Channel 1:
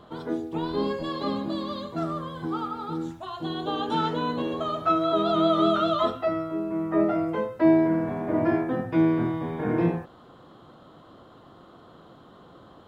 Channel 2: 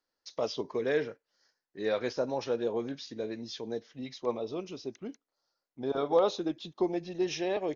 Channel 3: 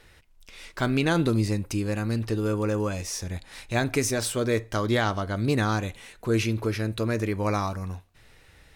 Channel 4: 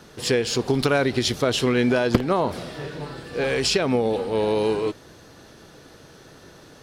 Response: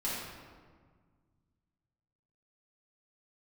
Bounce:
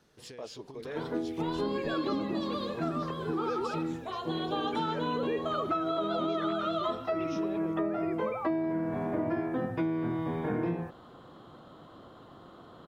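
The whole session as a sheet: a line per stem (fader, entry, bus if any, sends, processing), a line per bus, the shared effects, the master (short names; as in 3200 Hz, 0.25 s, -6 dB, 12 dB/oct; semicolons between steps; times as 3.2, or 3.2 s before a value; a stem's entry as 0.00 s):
-1.0 dB, 0.85 s, no send, dry
-11.0 dB, 0.00 s, no send, dry
-7.5 dB, 0.80 s, no send, sine-wave speech; auto swell 0.332 s
-19.0 dB, 0.00 s, no send, compressor 12:1, threshold -26 dBFS, peak gain reduction 15.5 dB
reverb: off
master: compressor 12:1, threshold -27 dBFS, peak gain reduction 12.5 dB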